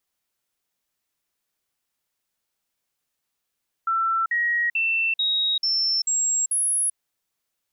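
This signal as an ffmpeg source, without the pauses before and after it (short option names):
-f lavfi -i "aevalsrc='0.106*clip(min(mod(t,0.44),0.39-mod(t,0.44))/0.005,0,1)*sin(2*PI*1340*pow(2,floor(t/0.44)/2)*mod(t,0.44))':d=3.08:s=44100"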